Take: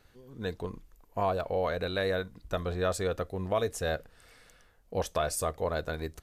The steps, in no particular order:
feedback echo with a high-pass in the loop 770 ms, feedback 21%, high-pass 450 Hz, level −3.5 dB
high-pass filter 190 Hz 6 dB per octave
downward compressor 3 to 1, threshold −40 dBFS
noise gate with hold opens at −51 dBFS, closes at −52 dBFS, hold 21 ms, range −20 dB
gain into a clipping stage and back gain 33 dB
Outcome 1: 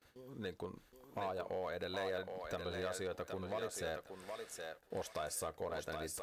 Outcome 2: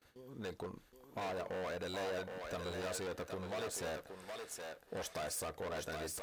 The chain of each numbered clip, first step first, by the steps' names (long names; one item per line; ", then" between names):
downward compressor, then gain into a clipping stage and back, then feedback echo with a high-pass in the loop, then noise gate with hold, then high-pass filter
gain into a clipping stage and back, then downward compressor, then feedback echo with a high-pass in the loop, then noise gate with hold, then high-pass filter